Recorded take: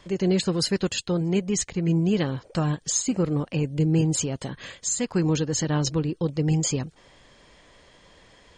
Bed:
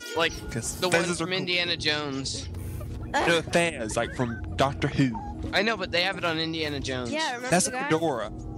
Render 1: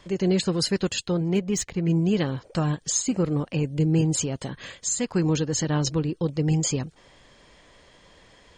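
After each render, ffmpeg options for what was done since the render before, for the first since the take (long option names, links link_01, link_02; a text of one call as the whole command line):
ffmpeg -i in.wav -filter_complex "[0:a]asettb=1/sr,asplit=3[link_01][link_02][link_03];[link_01]atrim=end=1.144[link_04];[link_02]atrim=start=1.14:end=1.9,asetpts=PTS-STARTPTS,afade=type=in:duration=0.004:curve=qsin,afade=type=out:start_time=0.756:duration=0.004:curve=qsin,adynamicsmooth=sensitivity=7.5:basefreq=5100[link_05];[link_03]atrim=start=1.896[link_06];[link_04][link_05]acrossfade=duration=0.004:curve1=hsin:curve2=qsin[link_07];[link_07][link_06]acrossfade=duration=0.004:curve1=qsin:curve2=hsin" out.wav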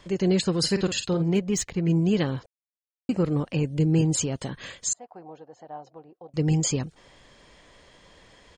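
ffmpeg -i in.wav -filter_complex "[0:a]asplit=3[link_01][link_02][link_03];[link_01]afade=type=out:start_time=0.63:duration=0.02[link_04];[link_02]asplit=2[link_05][link_06];[link_06]adelay=48,volume=-9dB[link_07];[link_05][link_07]amix=inputs=2:normalize=0,afade=type=in:start_time=0.63:duration=0.02,afade=type=out:start_time=1.32:duration=0.02[link_08];[link_03]afade=type=in:start_time=1.32:duration=0.02[link_09];[link_04][link_08][link_09]amix=inputs=3:normalize=0,asettb=1/sr,asplit=3[link_10][link_11][link_12];[link_10]atrim=end=4.934[link_13];[link_11]atrim=start=4.93:end=6.34,asetpts=PTS-STARTPTS,afade=type=in:duration=0.004:curve=qsin,afade=type=out:start_time=1.406:duration=0.004:curve=qsin,bandpass=frequency=730:width_type=q:width=7.2[link_14];[link_12]atrim=start=6.336[link_15];[link_13][link_14]acrossfade=duration=0.004:curve1=hsin:curve2=qsin[link_16];[link_16][link_15]acrossfade=duration=0.004:curve1=qsin:curve2=hsin,asplit=3[link_17][link_18][link_19];[link_17]atrim=end=2.46,asetpts=PTS-STARTPTS,afade=type=out:start_time=2.456:duration=0.004:curve=hsin[link_20];[link_18]atrim=start=2.46:end=3.09,asetpts=PTS-STARTPTS,volume=0[link_21];[link_19]atrim=start=3.09,asetpts=PTS-STARTPTS,afade=type=in:duration=0.004:curve=hsin[link_22];[link_20][link_21][link_22]concat=n=3:v=0:a=1" out.wav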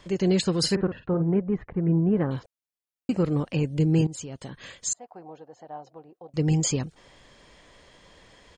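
ffmpeg -i in.wav -filter_complex "[0:a]asettb=1/sr,asplit=3[link_01][link_02][link_03];[link_01]atrim=end=0.754[link_04];[link_02]atrim=start=0.75:end=2.31,asetpts=PTS-STARTPTS,afade=type=in:duration=0.004:curve=qsin,afade=type=out:start_time=1.556:duration=0.004:curve=qsin,lowpass=frequency=1600:width=0.5412,lowpass=frequency=1600:width=1.3066[link_05];[link_03]atrim=start=2.306[link_06];[link_04][link_05]acrossfade=duration=0.004:curve1=hsin:curve2=qsin[link_07];[link_07][link_06]acrossfade=duration=0.004:curve1=qsin:curve2=hsin,asplit=2[link_08][link_09];[link_08]atrim=end=4.07,asetpts=PTS-STARTPTS,afade=type=out:start_time=4.066:duration=0.004:curve=hsin:silence=0.158489[link_10];[link_09]atrim=start=4.07,asetpts=PTS-STARTPTS,afade=type=in:duration=1:silence=0.158489[link_11];[link_10][link_11]concat=n=2:v=0:a=1" out.wav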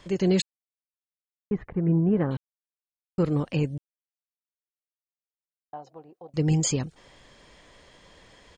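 ffmpeg -i in.wav -filter_complex "[0:a]asplit=7[link_01][link_02][link_03][link_04][link_05][link_06][link_07];[link_01]atrim=end=0.42,asetpts=PTS-STARTPTS,afade=type=out:start_time=0.416:duration=0.004:curve=hsin[link_08];[link_02]atrim=start=0.42:end=1.51,asetpts=PTS-STARTPTS,volume=0[link_09];[link_03]atrim=start=1.51:end=2.37,asetpts=PTS-STARTPTS,afade=type=in:duration=0.004:curve=hsin,afade=type=out:start_time=0.856:duration=0.004:curve=hsin[link_10];[link_04]atrim=start=2.37:end=3.18,asetpts=PTS-STARTPTS,volume=0[link_11];[link_05]atrim=start=3.18:end=3.78,asetpts=PTS-STARTPTS,afade=type=in:duration=0.004:curve=hsin,afade=type=out:start_time=0.596:duration=0.004:curve=hsin[link_12];[link_06]atrim=start=3.78:end=5.73,asetpts=PTS-STARTPTS,volume=0[link_13];[link_07]atrim=start=5.73,asetpts=PTS-STARTPTS,afade=type=in:duration=0.004:curve=hsin[link_14];[link_08][link_09][link_10][link_11][link_12][link_13][link_14]concat=n=7:v=0:a=1" out.wav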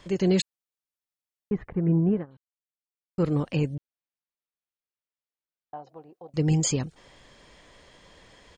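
ffmpeg -i in.wav -filter_complex "[0:a]asettb=1/sr,asplit=3[link_01][link_02][link_03];[link_01]atrim=end=3.754[link_04];[link_02]atrim=start=3.75:end=5.89,asetpts=PTS-STARTPTS,afade=type=in:duration=0.004:curve=qsin,afade=type=out:start_time=2.136:duration=0.004:curve=qsin,lowpass=3900[link_05];[link_03]atrim=start=5.886[link_06];[link_04][link_05]acrossfade=duration=0.004:curve1=hsin:curve2=qsin[link_07];[link_07][link_06]acrossfade=duration=0.004:curve1=qsin:curve2=hsin,asplit=3[link_08][link_09][link_10];[link_08]atrim=end=2.26,asetpts=PTS-STARTPTS,afade=type=out:start_time=2.1:duration=0.16:silence=0.0630957[link_11];[link_09]atrim=start=2.26:end=3.07,asetpts=PTS-STARTPTS,volume=-24dB[link_12];[link_10]atrim=start=3.07,asetpts=PTS-STARTPTS,afade=type=in:duration=0.16:silence=0.0630957[link_13];[link_11][link_12][link_13]concat=n=3:v=0:a=1" out.wav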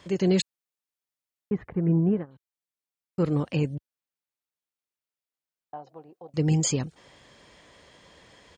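ffmpeg -i in.wav -af "highpass=65" out.wav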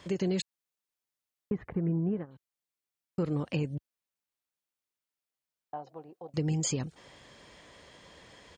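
ffmpeg -i in.wav -af "acompressor=threshold=-28dB:ratio=4" out.wav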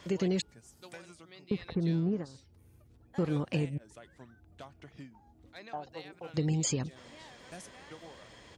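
ffmpeg -i in.wav -i bed.wav -filter_complex "[1:a]volume=-25.5dB[link_01];[0:a][link_01]amix=inputs=2:normalize=0" out.wav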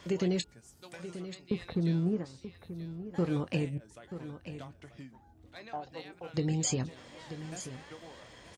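ffmpeg -i in.wav -filter_complex "[0:a]asplit=2[link_01][link_02];[link_02]adelay=23,volume=-13dB[link_03];[link_01][link_03]amix=inputs=2:normalize=0,aecho=1:1:933:0.251" out.wav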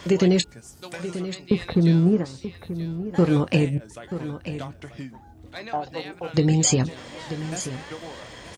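ffmpeg -i in.wav -af "volume=11.5dB" out.wav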